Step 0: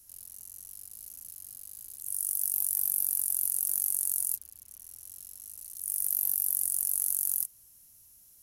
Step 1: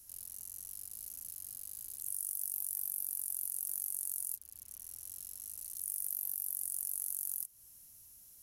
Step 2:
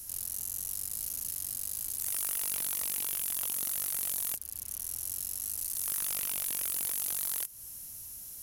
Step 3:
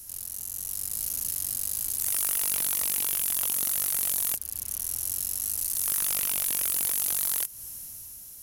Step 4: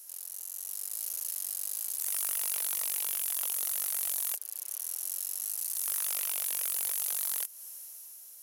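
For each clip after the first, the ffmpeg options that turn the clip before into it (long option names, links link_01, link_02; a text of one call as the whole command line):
ffmpeg -i in.wav -af "acompressor=threshold=-37dB:ratio=2.5" out.wav
ffmpeg -i in.wav -af "aeval=exprs='0.0944*sin(PI/2*5.62*val(0)/0.0944)':channel_layout=same,volume=-6dB" out.wav
ffmpeg -i in.wav -af "dynaudnorm=framelen=170:gausssize=9:maxgain=6dB" out.wav
ffmpeg -i in.wav -af "highpass=frequency=430:width=0.5412,highpass=frequency=430:width=1.3066,volume=-5dB" out.wav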